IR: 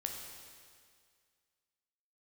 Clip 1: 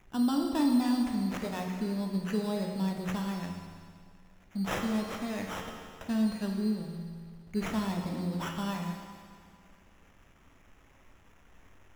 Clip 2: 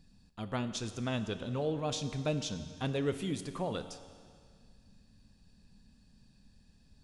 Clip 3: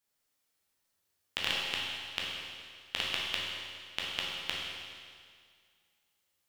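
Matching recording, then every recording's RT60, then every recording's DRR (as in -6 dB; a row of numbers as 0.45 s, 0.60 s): 1; 2.0 s, 2.0 s, 2.0 s; 1.5 dB, 9.5 dB, -5.0 dB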